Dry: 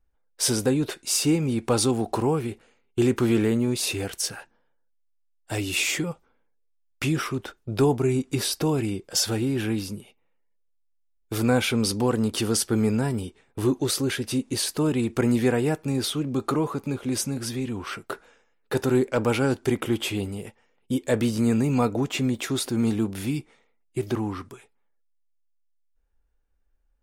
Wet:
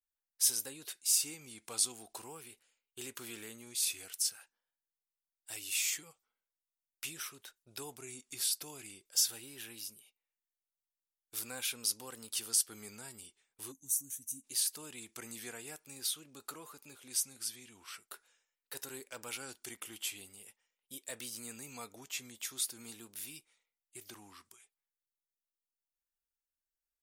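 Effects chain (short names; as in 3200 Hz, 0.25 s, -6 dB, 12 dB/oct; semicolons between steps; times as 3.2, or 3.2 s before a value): spectral gain 13.7–14.45, 300–5400 Hz -22 dB; vibrato 0.44 Hz 68 cents; pre-emphasis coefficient 0.97; gain -4 dB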